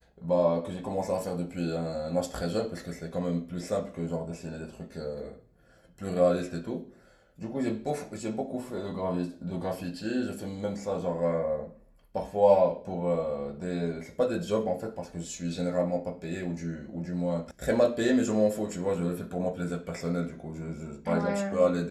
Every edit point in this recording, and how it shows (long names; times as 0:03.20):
0:17.51: cut off before it has died away